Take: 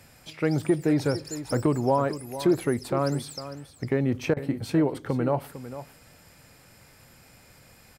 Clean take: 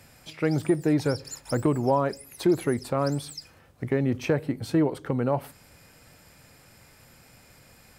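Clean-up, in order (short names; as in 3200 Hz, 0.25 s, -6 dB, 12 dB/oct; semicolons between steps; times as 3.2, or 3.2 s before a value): interpolate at 4.34, 26 ms; inverse comb 0.452 s -13 dB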